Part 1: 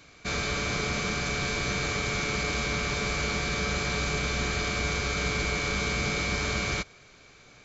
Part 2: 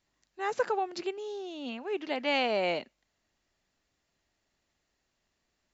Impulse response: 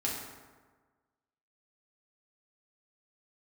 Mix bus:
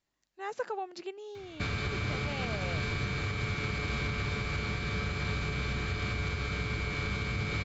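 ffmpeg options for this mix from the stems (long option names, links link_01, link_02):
-filter_complex "[0:a]equalizer=frequency=100:width_type=o:width=0.67:gain=12,equalizer=frequency=630:width_type=o:width=0.67:gain=-5,equalizer=frequency=6300:width_type=o:width=0.67:gain=-12,adelay=1350,volume=0.5dB[link_01];[1:a]volume=-6dB[link_02];[link_01][link_02]amix=inputs=2:normalize=0,alimiter=limit=-23.5dB:level=0:latency=1:release=321"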